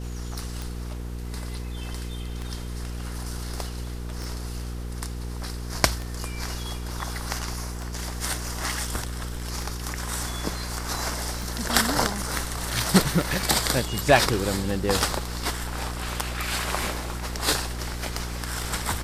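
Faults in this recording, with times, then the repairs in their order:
hum 60 Hz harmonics 8 -33 dBFS
tick 33 1/3 rpm
4.24 pop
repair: de-click; de-hum 60 Hz, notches 8

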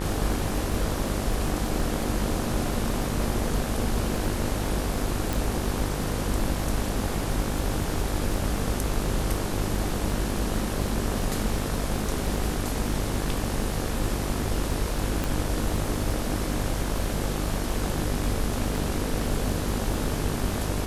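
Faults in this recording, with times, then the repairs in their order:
buzz 50 Hz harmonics 36 -31 dBFS
crackle 35/s -32 dBFS
5.33 pop
15.24 pop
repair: de-click; de-hum 50 Hz, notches 36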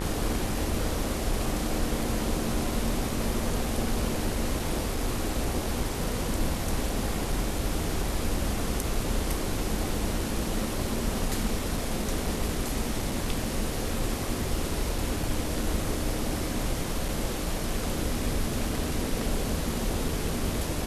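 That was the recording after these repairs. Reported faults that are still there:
15.24 pop

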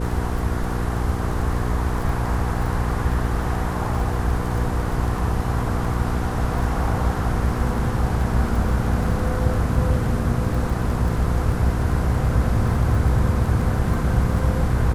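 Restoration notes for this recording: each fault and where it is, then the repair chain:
crackle 24/s -28 dBFS
hum 60 Hz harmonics 8 -25 dBFS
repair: de-click; de-hum 60 Hz, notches 8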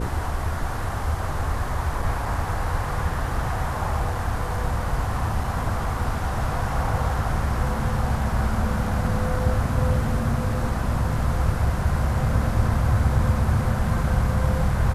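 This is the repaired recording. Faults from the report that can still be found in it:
none

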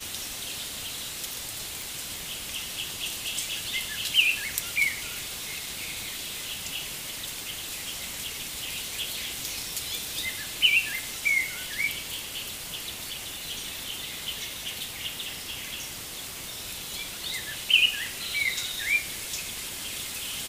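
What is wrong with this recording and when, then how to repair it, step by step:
1.82 pop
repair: de-click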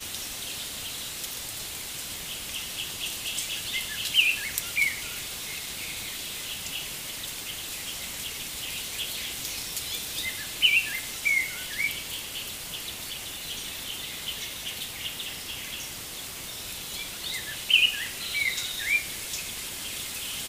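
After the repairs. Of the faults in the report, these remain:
none

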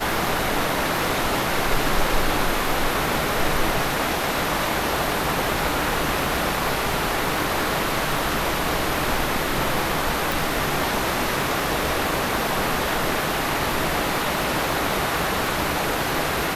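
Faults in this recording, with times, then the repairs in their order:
crackle 29/s -26 dBFS
10.32 pop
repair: de-click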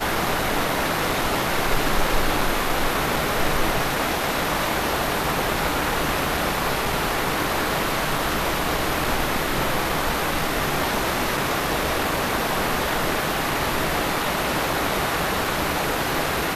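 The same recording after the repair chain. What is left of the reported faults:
none

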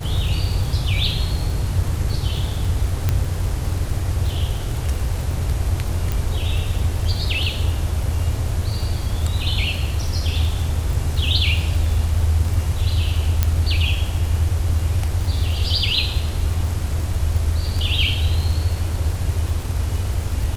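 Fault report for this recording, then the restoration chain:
crackle 53/s -26 dBFS
3.09 pop -6 dBFS
6.12 pop
13.43 pop -3 dBFS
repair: de-click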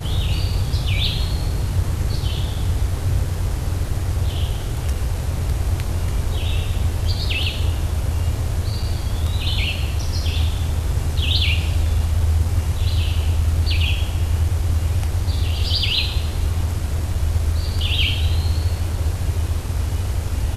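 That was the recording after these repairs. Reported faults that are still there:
13.43 pop

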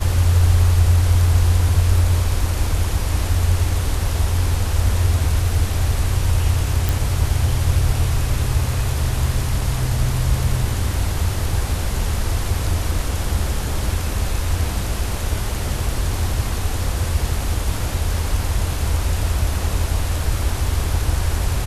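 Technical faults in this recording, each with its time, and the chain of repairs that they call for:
6.89 pop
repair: de-click

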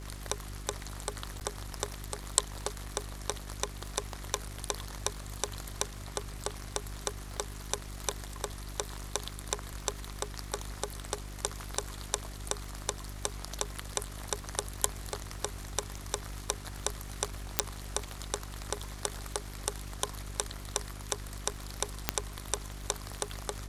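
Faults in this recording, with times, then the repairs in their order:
crackle 53/s -44 dBFS
hum 50 Hz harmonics 8 -43 dBFS
1.4–1.41 gap 9.2 ms
17.59 pop -5 dBFS
22.09 pop -6 dBFS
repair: de-click; de-hum 50 Hz, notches 8; interpolate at 1.4, 9.2 ms

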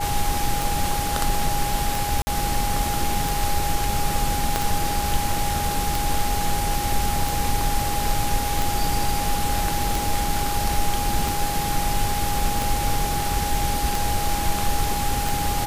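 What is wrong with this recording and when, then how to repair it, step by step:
tick 45 rpm
tone 820 Hz -26 dBFS
2.22–2.27 gap 50 ms
4.56 pop -5 dBFS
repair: de-click; notch 820 Hz, Q 30; interpolate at 2.22, 50 ms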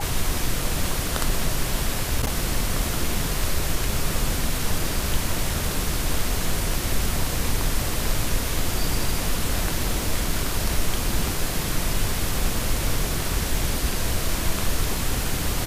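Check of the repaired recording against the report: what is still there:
4.56 pop

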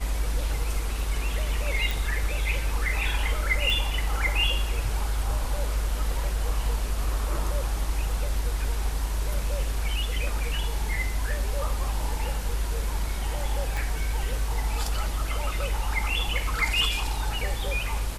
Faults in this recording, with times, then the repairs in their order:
1.91 pop
3.7 pop
13.77 pop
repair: de-click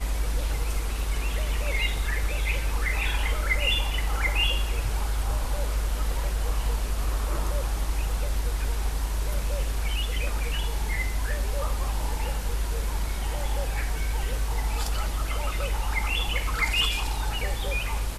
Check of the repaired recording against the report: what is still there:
13.77 pop

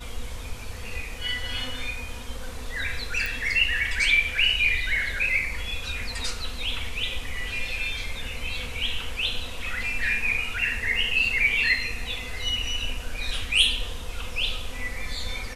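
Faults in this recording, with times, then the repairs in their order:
3.26 pop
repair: de-click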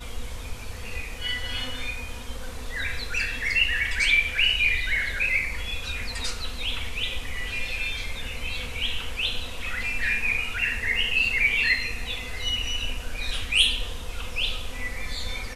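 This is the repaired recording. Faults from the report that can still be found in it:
none

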